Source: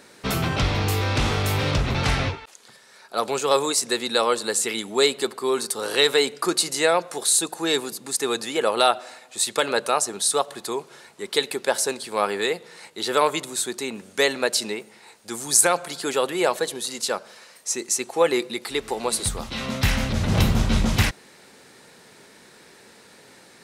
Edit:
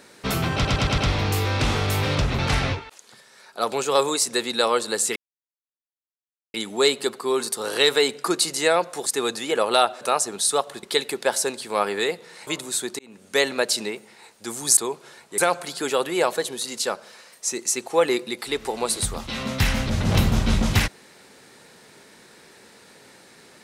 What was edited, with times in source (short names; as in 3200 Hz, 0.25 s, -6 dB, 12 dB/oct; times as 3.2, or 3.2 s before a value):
0.54 stutter 0.11 s, 5 plays
4.72 insert silence 1.38 s
7.24–8.12 cut
9.07–9.82 cut
10.64–11.25 move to 15.61
12.89–13.31 cut
13.83–14.24 fade in